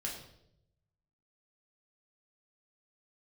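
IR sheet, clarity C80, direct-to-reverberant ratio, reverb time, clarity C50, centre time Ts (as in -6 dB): 8.0 dB, -2.5 dB, 0.75 s, 5.5 dB, 35 ms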